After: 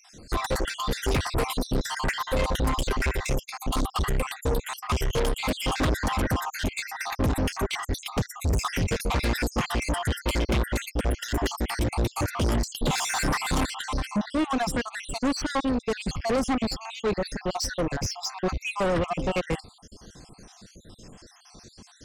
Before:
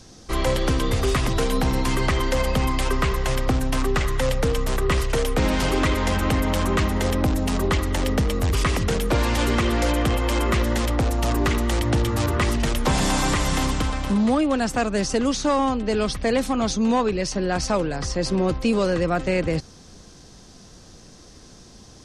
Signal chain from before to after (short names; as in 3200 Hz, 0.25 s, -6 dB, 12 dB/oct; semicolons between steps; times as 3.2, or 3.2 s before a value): random spectral dropouts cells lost 60%; soft clip -27.5 dBFS, distortion -7 dB; upward expander 1.5:1, over -40 dBFS; gain +7 dB